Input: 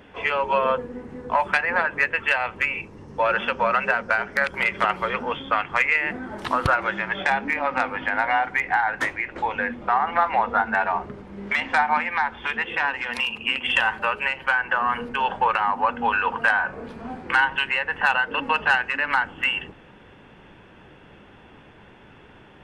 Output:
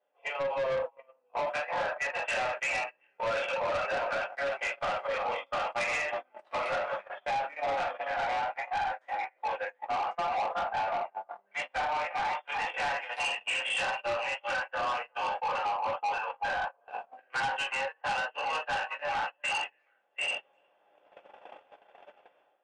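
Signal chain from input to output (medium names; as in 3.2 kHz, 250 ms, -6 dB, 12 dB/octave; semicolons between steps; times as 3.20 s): in parallel at -1 dB: compression, threshold -33 dBFS, peak gain reduction 17.5 dB; on the sum: resonant high-pass 600 Hz, resonance Q 7.3; peaking EQ 830 Hz +2.5 dB 0.44 oct; on a send: repeats whose band climbs or falls 366 ms, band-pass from 870 Hz, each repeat 1.4 oct, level -5 dB; on the sum: simulated room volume 320 m³, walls furnished, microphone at 3.7 m; level rider; dynamic bell 2.8 kHz, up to +7 dB, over -33 dBFS, Q 1.7; gate -15 dBFS, range -37 dB; saturation -13.5 dBFS, distortion -9 dB; peak limiter -19 dBFS, peak gain reduction 5.5 dB; resampled via 22.05 kHz; trim -8 dB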